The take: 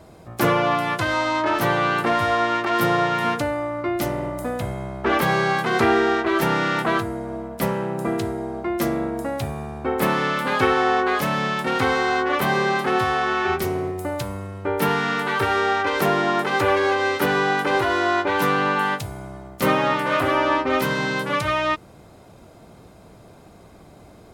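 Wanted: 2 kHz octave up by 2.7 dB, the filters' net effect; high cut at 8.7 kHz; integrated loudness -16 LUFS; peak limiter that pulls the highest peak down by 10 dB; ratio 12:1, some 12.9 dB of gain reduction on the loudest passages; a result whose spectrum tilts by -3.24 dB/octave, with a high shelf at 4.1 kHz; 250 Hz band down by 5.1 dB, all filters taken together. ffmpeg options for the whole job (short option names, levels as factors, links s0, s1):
-af "lowpass=8700,equalizer=f=250:t=o:g=-8,equalizer=f=2000:t=o:g=4.5,highshelf=f=4100:g=-4,acompressor=threshold=0.0398:ratio=12,volume=7.08,alimiter=limit=0.473:level=0:latency=1"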